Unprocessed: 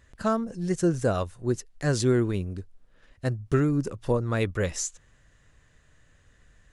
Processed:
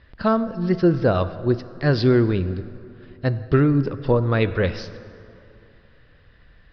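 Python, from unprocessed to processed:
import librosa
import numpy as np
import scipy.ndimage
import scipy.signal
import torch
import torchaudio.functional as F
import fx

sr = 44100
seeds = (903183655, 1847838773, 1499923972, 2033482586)

y = scipy.signal.sosfilt(scipy.signal.butter(16, 5100.0, 'lowpass', fs=sr, output='sos'), x)
y = fx.rev_plate(y, sr, seeds[0], rt60_s=2.7, hf_ratio=0.55, predelay_ms=0, drr_db=12.5)
y = y * 10.0 ** (6.0 / 20.0)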